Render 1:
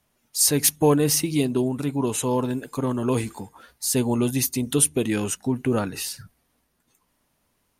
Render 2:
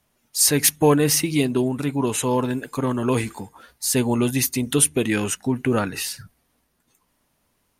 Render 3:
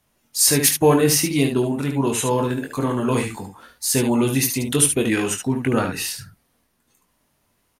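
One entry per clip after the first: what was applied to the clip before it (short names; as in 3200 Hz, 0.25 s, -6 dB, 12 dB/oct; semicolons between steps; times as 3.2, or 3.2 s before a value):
dynamic EQ 1900 Hz, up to +6 dB, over -45 dBFS, Q 1.1; gain +1.5 dB
early reflections 22 ms -6 dB, 73 ms -6.5 dB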